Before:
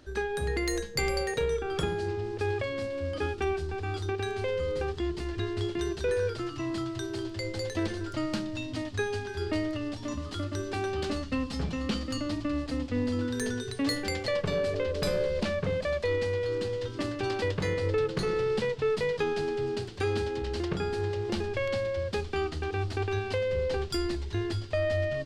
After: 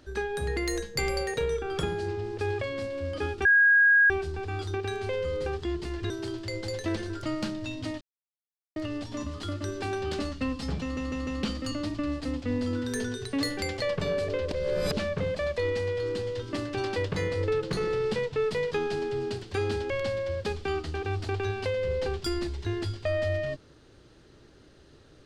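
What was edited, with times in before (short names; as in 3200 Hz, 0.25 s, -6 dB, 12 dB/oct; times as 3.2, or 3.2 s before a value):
3.45 add tone 1640 Hz -16 dBFS 0.65 s
5.45–7.01 cut
8.92–9.67 mute
11.73 stutter 0.15 s, 4 plays
14.97–15.43 reverse
20.36–21.58 cut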